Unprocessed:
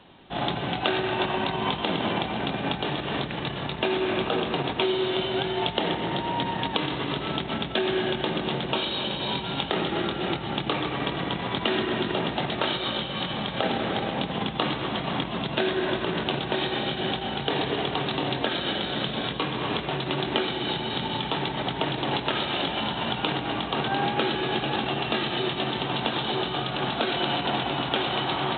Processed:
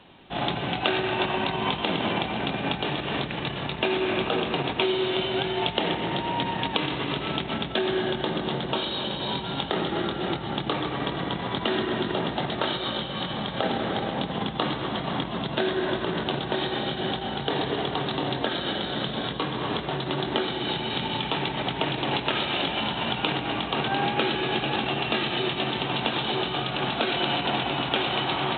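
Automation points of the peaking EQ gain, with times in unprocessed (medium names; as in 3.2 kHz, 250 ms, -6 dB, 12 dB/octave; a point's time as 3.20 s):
peaking EQ 2.5 kHz 0.44 oct
7.39 s +3 dB
8.03 s -5 dB
20.38 s -5 dB
20.91 s +3.5 dB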